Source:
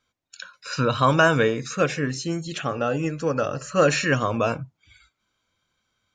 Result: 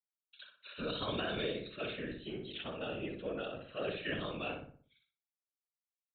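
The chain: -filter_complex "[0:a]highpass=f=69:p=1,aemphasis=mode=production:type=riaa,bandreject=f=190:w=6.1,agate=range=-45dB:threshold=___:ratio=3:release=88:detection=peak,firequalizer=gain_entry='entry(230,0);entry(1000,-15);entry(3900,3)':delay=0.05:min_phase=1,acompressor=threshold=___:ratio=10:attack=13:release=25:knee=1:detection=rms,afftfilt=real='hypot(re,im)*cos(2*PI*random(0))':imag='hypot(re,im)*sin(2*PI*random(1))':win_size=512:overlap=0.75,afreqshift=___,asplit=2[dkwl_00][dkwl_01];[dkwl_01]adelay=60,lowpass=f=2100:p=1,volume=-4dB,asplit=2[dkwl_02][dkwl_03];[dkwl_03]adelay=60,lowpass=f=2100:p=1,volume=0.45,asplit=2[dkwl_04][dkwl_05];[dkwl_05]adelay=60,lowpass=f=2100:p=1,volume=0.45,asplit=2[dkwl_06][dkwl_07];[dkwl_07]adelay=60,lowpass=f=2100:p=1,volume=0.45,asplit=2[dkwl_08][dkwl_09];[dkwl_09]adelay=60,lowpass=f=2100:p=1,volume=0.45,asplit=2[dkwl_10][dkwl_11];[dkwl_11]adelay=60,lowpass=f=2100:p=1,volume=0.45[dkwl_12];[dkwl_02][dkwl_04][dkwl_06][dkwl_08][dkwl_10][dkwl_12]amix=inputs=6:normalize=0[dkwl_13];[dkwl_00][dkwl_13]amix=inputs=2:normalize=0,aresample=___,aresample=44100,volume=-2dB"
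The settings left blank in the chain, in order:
-43dB, -27dB, 13, 8000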